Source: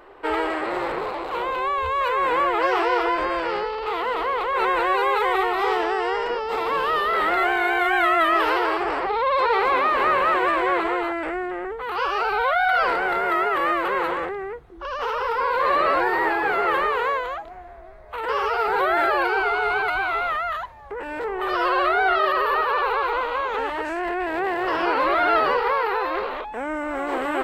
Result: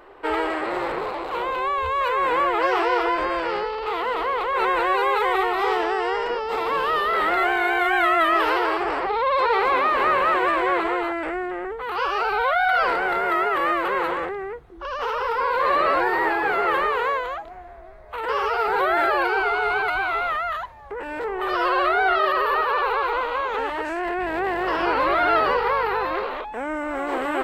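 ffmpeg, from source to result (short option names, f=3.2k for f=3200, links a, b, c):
-filter_complex "[0:a]asettb=1/sr,asplit=3[a][b][c];[a]atrim=end=24.174[d];[b]atrim=start=24.17:end=26.14,asetpts=PTS-STARTPTS,afade=t=in:d=0.004:c=qsin,afade=t=out:st=1.966:d=0.004:c=qsin,aeval=exprs='val(0)+0.00708*(sin(2*PI*50*n/s)+sin(2*PI*2*50*n/s)/2+sin(2*PI*3*50*n/s)/3+sin(2*PI*4*50*n/s)/4+sin(2*PI*5*50*n/s)/5)':c=same[e];[c]atrim=start=26.136[f];[d][e]acrossfade=d=0.004:c1=hsin:c2=qsin[g];[g][f]acrossfade=d=0.004:c1=qsin:c2=hsin"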